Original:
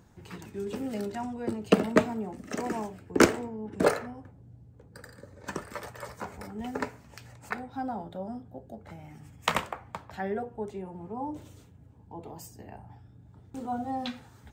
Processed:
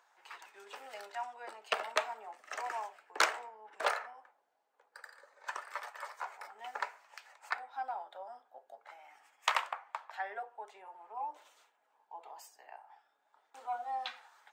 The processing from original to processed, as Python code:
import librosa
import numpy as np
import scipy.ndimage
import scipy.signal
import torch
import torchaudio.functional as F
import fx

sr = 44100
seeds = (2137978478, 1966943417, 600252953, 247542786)

y = scipy.signal.sosfilt(scipy.signal.butter(4, 770.0, 'highpass', fs=sr, output='sos'), x)
y = fx.high_shelf(y, sr, hz=4900.0, db=-12.0)
y = fx.transformer_sat(y, sr, knee_hz=3800.0)
y = F.gain(torch.from_numpy(y), 1.0).numpy()